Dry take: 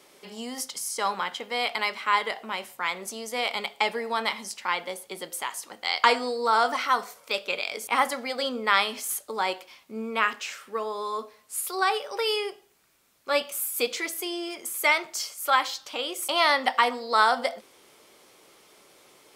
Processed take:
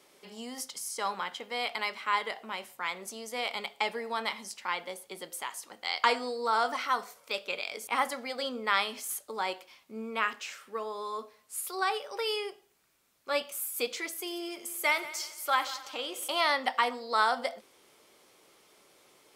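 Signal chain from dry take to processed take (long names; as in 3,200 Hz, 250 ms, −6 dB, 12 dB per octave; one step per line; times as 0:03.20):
0:14.09–0:16.41: echo machine with several playback heads 90 ms, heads first and second, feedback 44%, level −18 dB
level −5.5 dB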